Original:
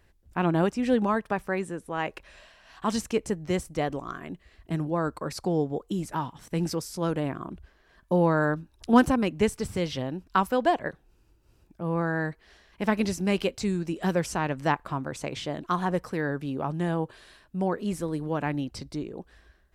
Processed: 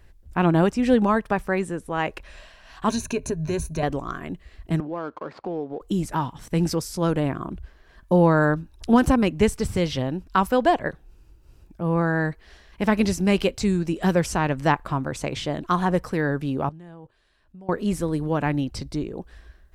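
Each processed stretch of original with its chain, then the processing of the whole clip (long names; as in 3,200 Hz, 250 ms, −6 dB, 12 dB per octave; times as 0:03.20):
0:02.89–0:03.83: EQ curve with evenly spaced ripples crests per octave 1.5, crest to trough 14 dB + downward compressor 2.5 to 1, threshold −29 dBFS
0:04.80–0:05.81: running median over 15 samples + band-pass filter 290–3,100 Hz + downward compressor 2 to 1, threshold −35 dBFS
0:16.69–0:17.69: high-shelf EQ 9,600 Hz −9.5 dB + output level in coarse steps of 24 dB
whole clip: low-shelf EQ 69 Hz +11 dB; boost into a limiter +11 dB; level −6.5 dB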